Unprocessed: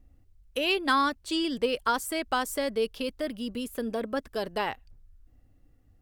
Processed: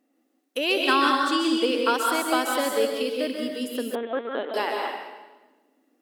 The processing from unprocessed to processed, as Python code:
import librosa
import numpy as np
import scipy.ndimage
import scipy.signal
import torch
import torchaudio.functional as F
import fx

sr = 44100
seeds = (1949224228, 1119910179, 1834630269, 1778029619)

y = fx.echo_filtered(x, sr, ms=118, feedback_pct=73, hz=800.0, wet_db=-17.5)
y = fx.rev_plate(y, sr, seeds[0], rt60_s=1.1, hf_ratio=0.95, predelay_ms=120, drr_db=0.0)
y = fx.lpc_vocoder(y, sr, seeds[1], excitation='pitch_kept', order=10, at=(3.95, 4.54))
y = fx.brickwall_highpass(y, sr, low_hz=220.0)
y = y * 10.0 ** (2.0 / 20.0)